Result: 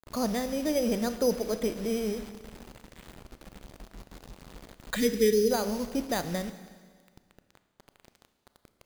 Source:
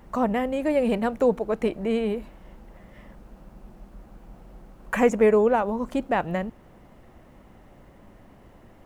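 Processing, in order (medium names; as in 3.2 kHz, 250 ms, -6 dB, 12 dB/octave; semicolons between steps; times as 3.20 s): careless resampling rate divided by 8×, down filtered, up hold; peaking EQ 950 Hz -6.5 dB 0.94 oct; bit crusher 7-bit; time-frequency box 4.96–5.51 s, 480–1700 Hz -30 dB; Schroeder reverb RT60 1.7 s, combs from 26 ms, DRR 10.5 dB; trim -4 dB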